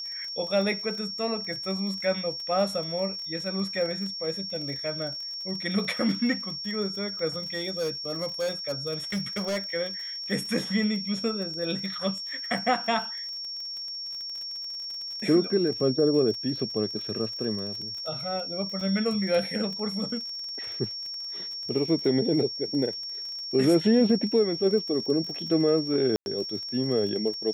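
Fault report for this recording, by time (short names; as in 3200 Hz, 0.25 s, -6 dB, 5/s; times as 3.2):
crackle 37/s -35 dBFS
tone 5500 Hz -33 dBFS
7.54–9.59 clipped -24.5 dBFS
18.81 gap 3.2 ms
26.16–26.26 gap 0.101 s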